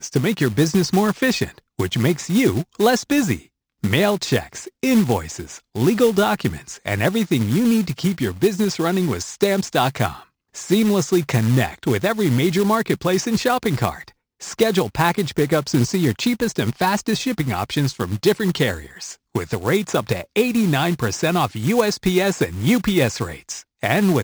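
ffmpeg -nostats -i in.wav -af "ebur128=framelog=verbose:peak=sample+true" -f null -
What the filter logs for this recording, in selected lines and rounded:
Integrated loudness:
  I:         -19.9 LUFS
  Threshold: -30.2 LUFS
Loudness range:
  LRA:         1.9 LU
  Threshold: -40.2 LUFS
  LRA low:   -21.2 LUFS
  LRA high:  -19.3 LUFS
Sample peak:
  Peak:       -3.1 dBFS
True peak:
  Peak:       -2.3 dBFS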